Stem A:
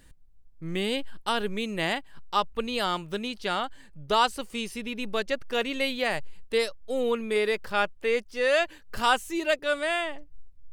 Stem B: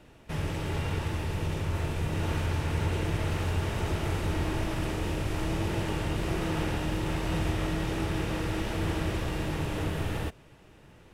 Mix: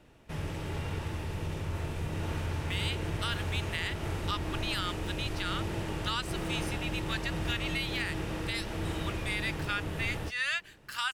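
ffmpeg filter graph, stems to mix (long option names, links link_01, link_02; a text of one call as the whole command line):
ffmpeg -i stem1.wav -i stem2.wav -filter_complex "[0:a]highpass=frequency=1300:width=0.5412,highpass=frequency=1300:width=1.3066,adelay=1950,volume=-1.5dB[link_01];[1:a]acontrast=84,volume=-11.5dB[link_02];[link_01][link_02]amix=inputs=2:normalize=0,alimiter=limit=-20dB:level=0:latency=1:release=165" out.wav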